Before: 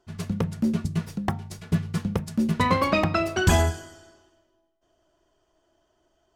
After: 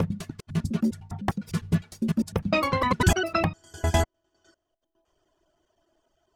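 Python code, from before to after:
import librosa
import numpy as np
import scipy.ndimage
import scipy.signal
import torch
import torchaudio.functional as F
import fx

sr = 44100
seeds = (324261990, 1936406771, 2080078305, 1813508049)

y = fx.block_reorder(x, sr, ms=101.0, group=5)
y = fx.dereverb_blind(y, sr, rt60_s=0.93)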